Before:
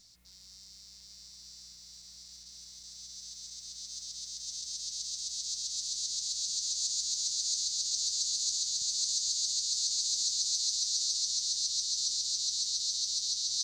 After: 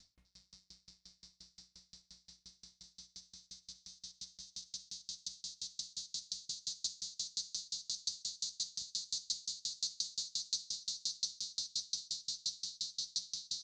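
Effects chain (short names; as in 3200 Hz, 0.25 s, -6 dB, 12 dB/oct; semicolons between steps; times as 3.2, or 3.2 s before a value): air absorption 98 m; dark delay 0.186 s, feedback 65%, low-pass 600 Hz, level -7.5 dB; dB-ramp tremolo decaying 5.7 Hz, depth 34 dB; gain +4 dB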